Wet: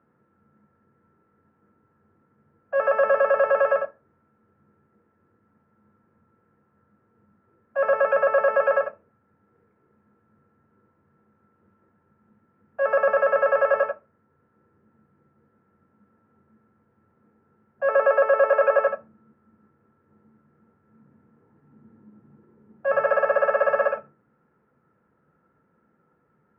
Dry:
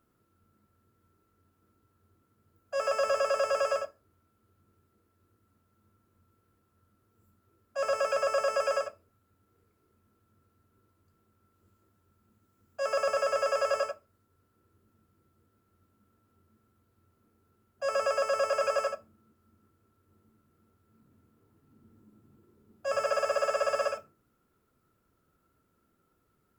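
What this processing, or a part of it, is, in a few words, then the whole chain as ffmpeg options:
bass cabinet: -filter_complex "[0:a]asettb=1/sr,asplit=3[link_01][link_02][link_03];[link_01]atrim=end=17.894[link_04];[link_02]atrim=start=17.89:end=18.88,asetpts=PTS-STARTPTS,afade=type=in:duration=0.004:curve=qsin,afade=type=out:start_time=0.986:duration=0.004:curve=qsin,lowshelf=frequency=210:width_type=q:width=1.5:gain=-13.5[link_05];[link_03]atrim=start=18.876[link_06];[link_04][link_05]acrossfade=duration=0.004:curve1=hsin:curve2=qsin[link_07];[link_07][link_06]acrossfade=duration=0.004:curve1=qsin:curve2=hsin,highpass=82,equalizer=frequency=93:width_type=q:width=4:gain=-5,equalizer=frequency=150:width_type=q:width=4:gain=7,equalizer=frequency=210:width_type=q:width=4:gain=6,equalizer=frequency=500:width_type=q:width=4:gain=7,equalizer=frequency=870:width_type=q:width=4:gain=9,equalizer=frequency=1700:width_type=q:width=4:gain=8,lowpass=frequency=2200:width=0.5412,lowpass=frequency=2200:width=1.3066,volume=3.5dB"

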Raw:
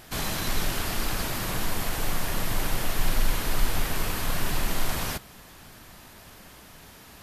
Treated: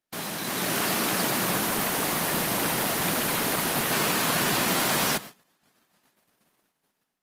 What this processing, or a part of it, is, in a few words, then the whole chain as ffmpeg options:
video call: -af "highpass=frequency=160:width=0.5412,highpass=frequency=160:width=1.3066,dynaudnorm=framelen=390:gausssize=3:maxgain=9dB,agate=range=-35dB:threshold=-36dB:ratio=16:detection=peak,volume=-1.5dB" -ar 48000 -c:a libopus -b:a 24k

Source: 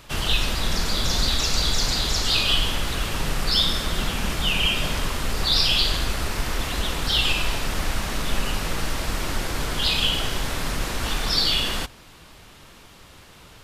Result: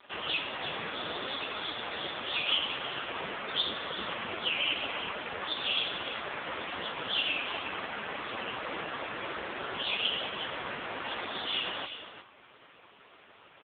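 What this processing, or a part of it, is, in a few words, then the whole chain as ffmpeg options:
telephone: -filter_complex "[0:a]asettb=1/sr,asplit=3[link_01][link_02][link_03];[link_01]atrim=end=7.014[link_04];[link_02]atrim=start=7.01:end=8.05,asetpts=PTS-STARTPTS,afade=type=in:duration=0.004:curve=qsin,afade=type=out:start_time=1.036:duration=0.004:curve=qsin,lowshelf=frequency=100:gain=4[link_05];[link_03]atrim=start=8.046[link_06];[link_04][link_05]acrossfade=duration=0.004:curve1=hsin:curve2=qsin[link_07];[link_07][link_06]acrossfade=duration=0.004:curve1=qsin:curve2=hsin,highpass=330,lowpass=3600,aecho=1:1:351:0.282" -ar 8000 -c:a libopencore_amrnb -b:a 5150

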